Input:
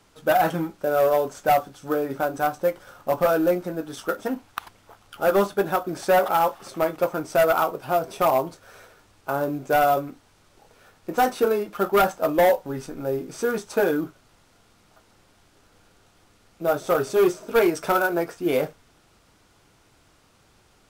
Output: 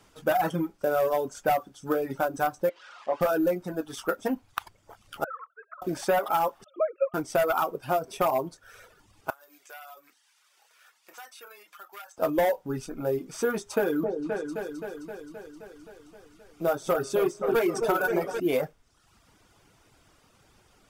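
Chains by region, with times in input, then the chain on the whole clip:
2.69–3.21 s: zero-crossing glitches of -19.5 dBFS + high-pass 430 Hz + tape spacing loss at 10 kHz 39 dB
5.24–5.82 s: formants replaced by sine waves + band-pass filter 1.3 kHz, Q 15 + compressor with a negative ratio -36 dBFS, ratio -0.5
6.64–7.14 s: formants replaced by sine waves + comb of notches 380 Hz
9.30–12.18 s: high-pass 1.4 kHz + compression 2.5:1, threshold -49 dBFS
13.53–18.40 s: de-hum 136.4 Hz, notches 31 + delay with an opening low-pass 262 ms, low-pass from 750 Hz, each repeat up 2 oct, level -6 dB
whole clip: reverb removal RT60 0.75 s; band-stop 4.1 kHz, Q 16; compression, threshold -21 dBFS

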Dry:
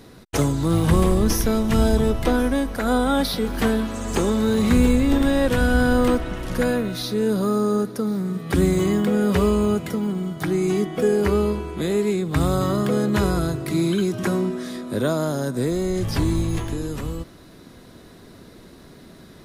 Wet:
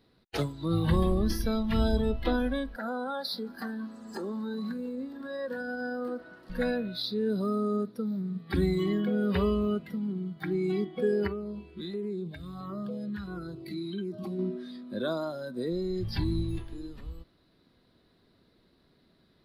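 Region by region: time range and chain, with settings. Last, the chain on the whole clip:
2.76–6.50 s: high-order bell 2.8 kHz -8.5 dB 1 oct + compression, threshold -19 dBFS + high-pass 210 Hz
11.27–14.39 s: compression 12:1, threshold -21 dBFS + LFO notch saw down 1.5 Hz 400–6300 Hz
whole clip: spectral noise reduction 13 dB; resonant high shelf 5.3 kHz -6.5 dB, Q 3; trim -7.5 dB

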